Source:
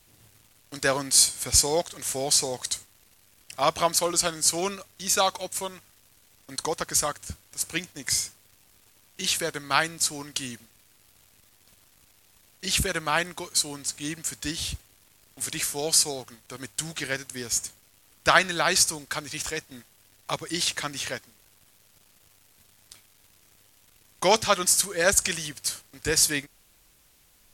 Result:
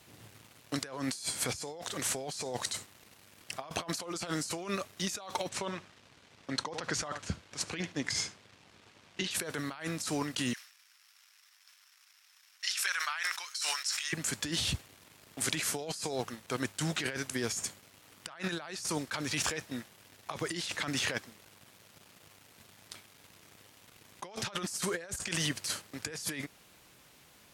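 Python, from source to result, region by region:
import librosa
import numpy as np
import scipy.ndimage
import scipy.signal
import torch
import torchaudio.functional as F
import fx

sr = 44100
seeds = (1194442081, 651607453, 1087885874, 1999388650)

y = fx.chain(x, sr, fx.lowpass(hz=5500.0, slope=12),
    fx.echo_single(ms=74, db=-21.0), at=(5.49, 9.31))
y = fx.chain(y, sr, fx.ladder_highpass(hz=1100.0, resonance_pct=25),
    fx.peak_eq(hz=5400.0, db=10.5, octaves=0.26),
    fx.sustainer(db_per_s=88.0), at=(10.53, 14.13))
y = scipy.signal.sosfilt(scipy.signal.butter(2, 110.0, 'highpass', fs=sr, output='sos'), y)
y = fx.high_shelf(y, sr, hz=5200.0, db=-10.5)
y = fx.over_compress(y, sr, threshold_db=-37.0, ratio=-1.0)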